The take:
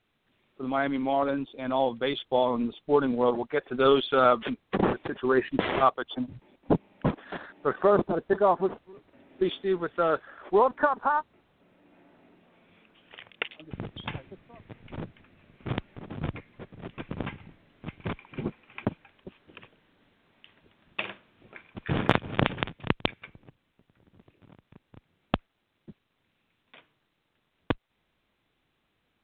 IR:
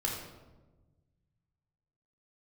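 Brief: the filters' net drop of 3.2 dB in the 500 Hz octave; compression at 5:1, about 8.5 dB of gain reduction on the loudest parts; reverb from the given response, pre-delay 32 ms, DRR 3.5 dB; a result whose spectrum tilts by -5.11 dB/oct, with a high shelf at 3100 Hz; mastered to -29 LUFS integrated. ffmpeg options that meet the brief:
-filter_complex "[0:a]equalizer=f=500:t=o:g=-4,highshelf=f=3.1k:g=-5,acompressor=threshold=-30dB:ratio=5,asplit=2[a][b];[1:a]atrim=start_sample=2205,adelay=32[c];[b][c]afir=irnorm=-1:irlink=0,volume=-8dB[d];[a][d]amix=inputs=2:normalize=0,volume=6.5dB"

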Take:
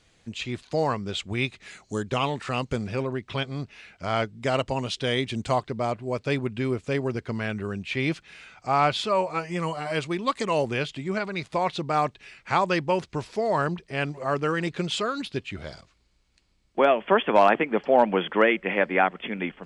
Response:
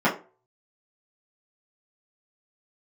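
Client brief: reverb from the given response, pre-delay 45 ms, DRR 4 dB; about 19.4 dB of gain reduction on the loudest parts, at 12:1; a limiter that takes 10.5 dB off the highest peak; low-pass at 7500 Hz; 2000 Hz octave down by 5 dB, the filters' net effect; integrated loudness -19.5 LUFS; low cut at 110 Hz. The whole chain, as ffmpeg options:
-filter_complex "[0:a]highpass=110,lowpass=7.5k,equalizer=f=2k:t=o:g=-6.5,acompressor=threshold=-34dB:ratio=12,alimiter=level_in=6.5dB:limit=-24dB:level=0:latency=1,volume=-6.5dB,asplit=2[a][b];[1:a]atrim=start_sample=2205,adelay=45[c];[b][c]afir=irnorm=-1:irlink=0,volume=-21.5dB[d];[a][d]amix=inputs=2:normalize=0,volume=20.5dB"

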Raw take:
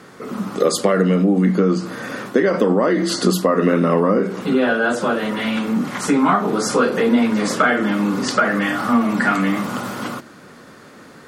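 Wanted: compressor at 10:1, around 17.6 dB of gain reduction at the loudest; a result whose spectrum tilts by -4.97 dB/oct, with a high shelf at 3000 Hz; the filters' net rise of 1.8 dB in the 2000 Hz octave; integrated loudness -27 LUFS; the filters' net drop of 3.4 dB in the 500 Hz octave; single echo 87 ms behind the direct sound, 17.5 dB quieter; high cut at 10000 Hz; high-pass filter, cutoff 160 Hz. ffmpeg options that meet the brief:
-af "highpass=160,lowpass=10k,equalizer=f=500:t=o:g=-4,equalizer=f=2k:t=o:g=4.5,highshelf=f=3k:g=-5.5,acompressor=threshold=-31dB:ratio=10,aecho=1:1:87:0.133,volume=7.5dB"

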